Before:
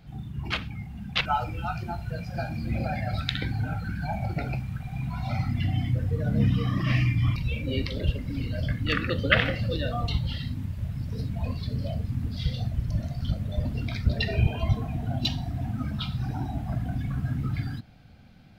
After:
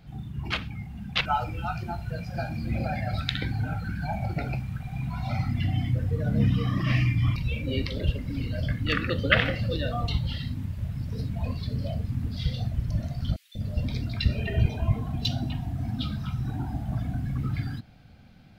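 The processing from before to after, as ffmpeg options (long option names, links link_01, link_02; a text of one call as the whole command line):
ffmpeg -i in.wav -filter_complex "[0:a]asettb=1/sr,asplit=3[link_01][link_02][link_03];[link_01]atrim=end=13.364[link_04];[link_02]atrim=start=13.36:end=17.38,asetpts=PTS-STARTPTS,afade=type=in:duration=0.004:curve=qsin,afade=type=out:start_time=4.016:duration=0.004:curve=qsin,acrossover=split=660|2300[link_05][link_06][link_07];[link_05]adelay=190[link_08];[link_06]adelay=250[link_09];[link_08][link_09][link_07]amix=inputs=3:normalize=0,atrim=end_sample=177282[link_10];[link_03]atrim=start=17.376[link_11];[link_04][link_10]acrossfade=duration=0.004:curve1=hsin:curve2=qsin[link_12];[link_12][link_11]acrossfade=duration=0.004:curve1=qsin:curve2=hsin" out.wav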